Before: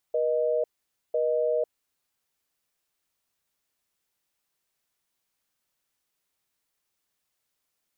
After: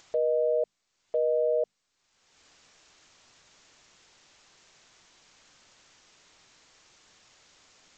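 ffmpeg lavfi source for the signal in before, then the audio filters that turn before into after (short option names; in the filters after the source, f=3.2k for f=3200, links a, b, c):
-f lavfi -i "aevalsrc='0.0562*(sin(2*PI*480*t)+sin(2*PI*620*t))*clip(min(mod(t,1),0.5-mod(t,1))/0.005,0,1)':d=1.74:s=44100"
-af "acompressor=mode=upward:threshold=-36dB:ratio=2.5,bandreject=f=50:t=h:w=6,bandreject=f=100:t=h:w=6,bandreject=f=150:t=h:w=6,bandreject=f=200:t=h:w=6,bandreject=f=250:t=h:w=6" -ar 16000 -c:a g722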